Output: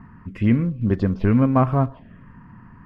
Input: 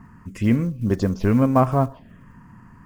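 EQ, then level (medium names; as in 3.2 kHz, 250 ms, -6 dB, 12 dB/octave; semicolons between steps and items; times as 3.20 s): treble shelf 2.5 kHz +9 dB; dynamic bell 640 Hz, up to -4 dB, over -28 dBFS, Q 0.85; distance through air 460 m; +2.0 dB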